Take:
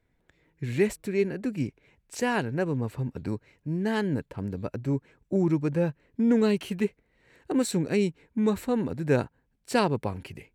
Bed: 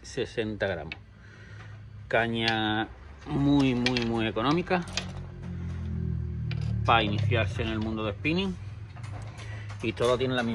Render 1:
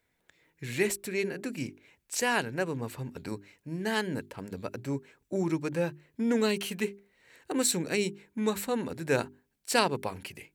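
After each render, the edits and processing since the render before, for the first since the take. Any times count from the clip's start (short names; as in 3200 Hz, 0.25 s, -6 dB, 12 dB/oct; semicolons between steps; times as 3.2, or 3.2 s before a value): tilt +2.5 dB/oct; notches 50/100/150/200/250/300/350/400 Hz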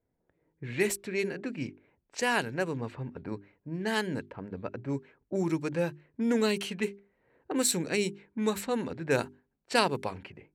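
low-pass opened by the level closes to 660 Hz, open at -25.5 dBFS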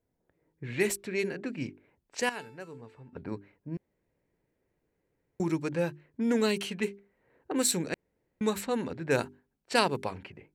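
2.29–3.13 resonator 440 Hz, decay 0.49 s, mix 80%; 3.77–5.4 room tone; 7.94–8.41 room tone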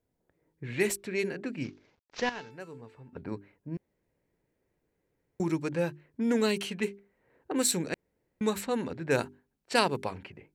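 1.64–2.51 CVSD 32 kbps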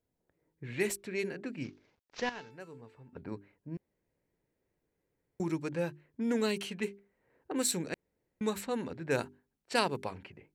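gain -4 dB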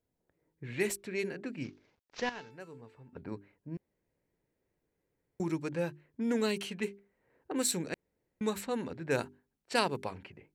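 nothing audible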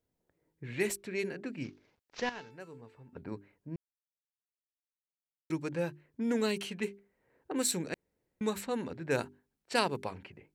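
3.76–5.5 mute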